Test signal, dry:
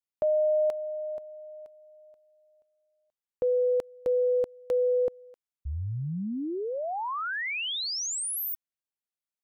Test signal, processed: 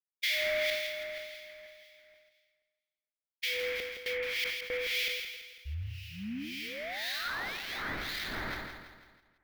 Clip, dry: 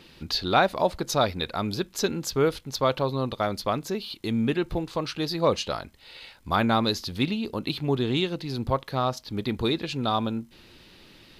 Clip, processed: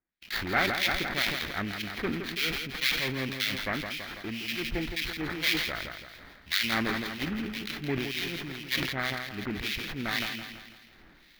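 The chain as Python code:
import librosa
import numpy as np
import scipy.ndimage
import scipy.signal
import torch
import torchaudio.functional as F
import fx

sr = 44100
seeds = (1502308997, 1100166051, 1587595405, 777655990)

y = fx.sample_hold(x, sr, seeds[0], rate_hz=2800.0, jitter_pct=20)
y = fx.harmonic_tremolo(y, sr, hz=1.9, depth_pct=100, crossover_hz=1900.0)
y = fx.graphic_eq(y, sr, hz=(125, 250, 500, 1000, 2000, 4000, 8000), db=(-8, -8, -8, -9, 9, 7, -12))
y = fx.echo_feedback(y, sr, ms=166, feedback_pct=49, wet_db=-8.5)
y = fx.gate_hold(y, sr, open_db=-47.0, close_db=-57.0, hold_ms=136.0, range_db=-34, attack_ms=14.0, release_ms=61.0)
y = fx.peak_eq(y, sr, hz=260.0, db=6.5, octaves=1.1)
y = fx.sustainer(y, sr, db_per_s=44.0)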